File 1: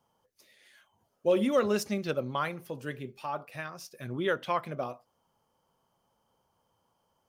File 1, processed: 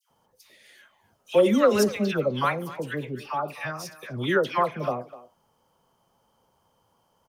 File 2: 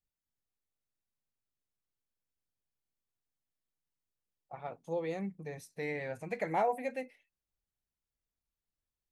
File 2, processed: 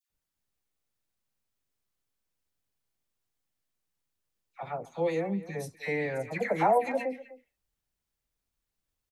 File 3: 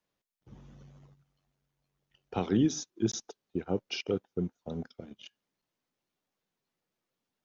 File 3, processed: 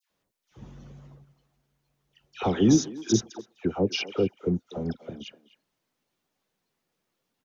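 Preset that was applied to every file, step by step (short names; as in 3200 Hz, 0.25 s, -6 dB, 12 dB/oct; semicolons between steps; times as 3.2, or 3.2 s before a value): dispersion lows, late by 0.101 s, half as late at 1400 Hz; speakerphone echo 0.25 s, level -16 dB; gain +6.5 dB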